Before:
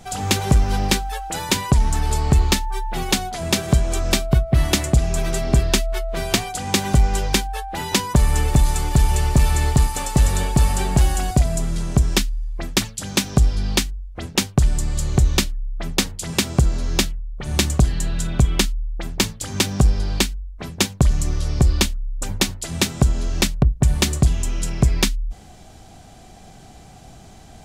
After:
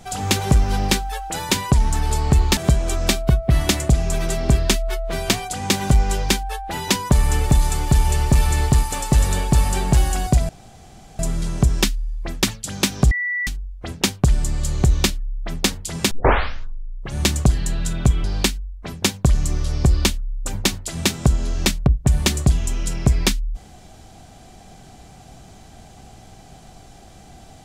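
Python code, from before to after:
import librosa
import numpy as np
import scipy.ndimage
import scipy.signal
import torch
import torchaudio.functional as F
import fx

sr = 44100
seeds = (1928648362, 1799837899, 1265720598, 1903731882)

y = fx.edit(x, sr, fx.cut(start_s=2.57, length_s=1.04),
    fx.insert_room_tone(at_s=11.53, length_s=0.7),
    fx.bleep(start_s=13.45, length_s=0.36, hz=1960.0, db=-20.5),
    fx.tape_start(start_s=16.45, length_s=1.06),
    fx.cut(start_s=18.58, length_s=1.42), tone=tone)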